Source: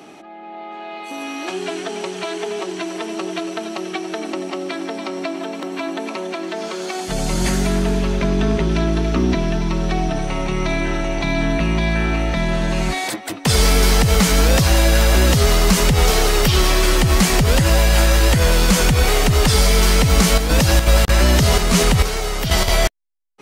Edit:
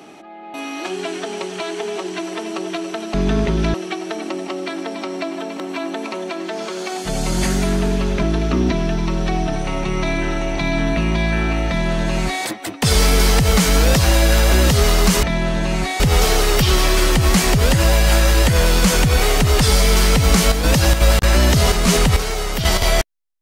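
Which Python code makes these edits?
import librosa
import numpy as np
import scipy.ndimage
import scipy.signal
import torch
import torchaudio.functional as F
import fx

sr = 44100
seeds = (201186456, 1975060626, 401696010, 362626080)

y = fx.edit(x, sr, fx.cut(start_s=0.54, length_s=0.63),
    fx.move(start_s=8.26, length_s=0.6, to_s=3.77),
    fx.duplicate(start_s=12.3, length_s=0.77, to_s=15.86), tone=tone)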